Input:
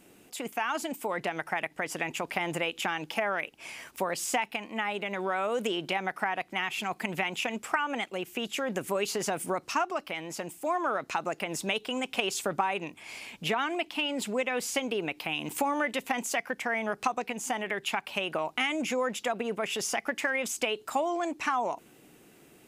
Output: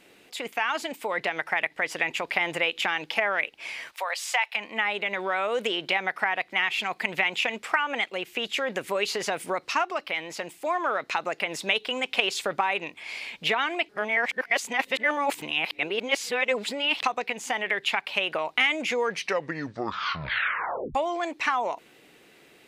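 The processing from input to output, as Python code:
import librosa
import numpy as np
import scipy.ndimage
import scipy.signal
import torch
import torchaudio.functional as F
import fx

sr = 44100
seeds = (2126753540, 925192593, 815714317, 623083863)

y = fx.highpass(x, sr, hz=650.0, slope=24, at=(3.91, 4.55), fade=0.02)
y = fx.edit(y, sr, fx.reverse_span(start_s=13.89, length_s=3.13),
    fx.tape_stop(start_s=18.88, length_s=2.07), tone=tone)
y = fx.graphic_eq(y, sr, hz=(500, 1000, 2000, 4000), db=(7, 4, 10, 11))
y = y * 10.0 ** (-5.0 / 20.0)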